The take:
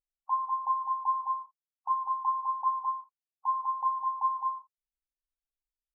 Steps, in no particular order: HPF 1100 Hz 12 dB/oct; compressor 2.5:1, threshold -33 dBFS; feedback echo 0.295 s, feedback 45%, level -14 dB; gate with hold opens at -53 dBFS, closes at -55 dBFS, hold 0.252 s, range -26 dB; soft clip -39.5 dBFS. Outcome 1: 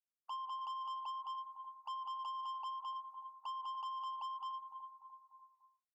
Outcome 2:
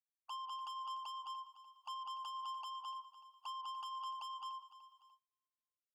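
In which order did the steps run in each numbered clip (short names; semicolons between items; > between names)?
gate with hold > feedback echo > compressor > HPF > soft clip; compressor > soft clip > feedback echo > gate with hold > HPF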